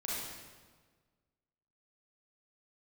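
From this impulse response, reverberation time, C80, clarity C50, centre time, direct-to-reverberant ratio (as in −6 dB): 1.5 s, 0.0 dB, −3.5 dB, 105 ms, −7.0 dB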